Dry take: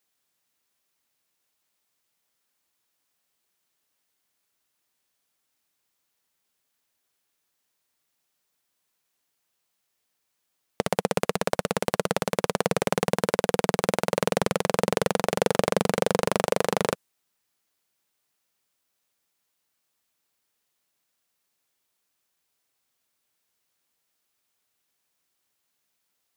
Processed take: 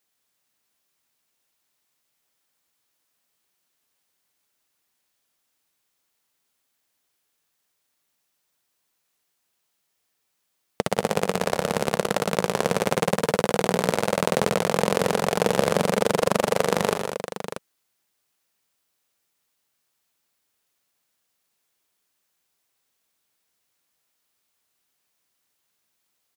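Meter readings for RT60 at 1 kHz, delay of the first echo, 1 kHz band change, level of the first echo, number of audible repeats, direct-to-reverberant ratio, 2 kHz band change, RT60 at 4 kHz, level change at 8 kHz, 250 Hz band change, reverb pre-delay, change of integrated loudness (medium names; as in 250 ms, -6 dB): no reverb, 71 ms, +2.5 dB, -15.0 dB, 5, no reverb, +2.5 dB, no reverb, +2.5 dB, +2.5 dB, no reverb, +2.0 dB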